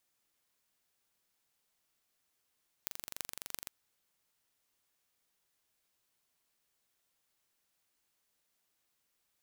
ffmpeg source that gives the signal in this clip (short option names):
-f lavfi -i "aevalsrc='0.376*eq(mod(n,1861),0)*(0.5+0.5*eq(mod(n,14888),0))':d=0.83:s=44100"